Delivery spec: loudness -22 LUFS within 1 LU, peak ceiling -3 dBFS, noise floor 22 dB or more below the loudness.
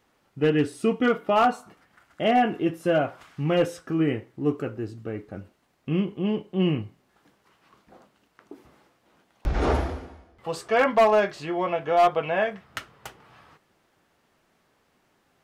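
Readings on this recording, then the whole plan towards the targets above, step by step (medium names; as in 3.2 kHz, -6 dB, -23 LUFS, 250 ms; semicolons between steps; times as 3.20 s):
clipped samples 0.4%; clipping level -13.0 dBFS; loudness -25.0 LUFS; peak level -13.0 dBFS; loudness target -22.0 LUFS
-> clip repair -13 dBFS; trim +3 dB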